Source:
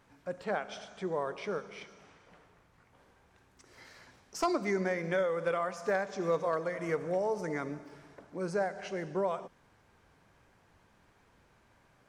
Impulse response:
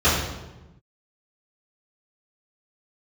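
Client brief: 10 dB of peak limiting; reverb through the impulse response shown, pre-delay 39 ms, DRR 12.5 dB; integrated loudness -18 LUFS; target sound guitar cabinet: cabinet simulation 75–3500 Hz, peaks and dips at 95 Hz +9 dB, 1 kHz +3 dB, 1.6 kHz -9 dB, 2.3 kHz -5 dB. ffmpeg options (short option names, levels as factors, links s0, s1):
-filter_complex "[0:a]alimiter=level_in=2:limit=0.0631:level=0:latency=1,volume=0.501,asplit=2[s0][s1];[1:a]atrim=start_sample=2205,adelay=39[s2];[s1][s2]afir=irnorm=-1:irlink=0,volume=0.0211[s3];[s0][s3]amix=inputs=2:normalize=0,highpass=75,equalizer=f=95:t=q:w=4:g=9,equalizer=f=1000:t=q:w=4:g=3,equalizer=f=1600:t=q:w=4:g=-9,equalizer=f=2300:t=q:w=4:g=-5,lowpass=f=3500:w=0.5412,lowpass=f=3500:w=1.3066,volume=12.6"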